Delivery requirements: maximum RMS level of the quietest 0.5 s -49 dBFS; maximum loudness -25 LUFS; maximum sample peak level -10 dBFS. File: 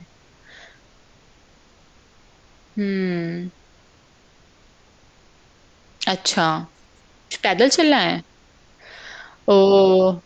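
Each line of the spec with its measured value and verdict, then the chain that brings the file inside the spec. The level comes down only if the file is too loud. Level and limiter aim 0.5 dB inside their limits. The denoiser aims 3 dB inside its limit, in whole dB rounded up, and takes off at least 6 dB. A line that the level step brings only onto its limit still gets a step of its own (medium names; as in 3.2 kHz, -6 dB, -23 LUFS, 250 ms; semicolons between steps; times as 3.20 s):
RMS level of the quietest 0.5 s -54 dBFS: pass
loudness -18.5 LUFS: fail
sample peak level -4.0 dBFS: fail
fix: trim -7 dB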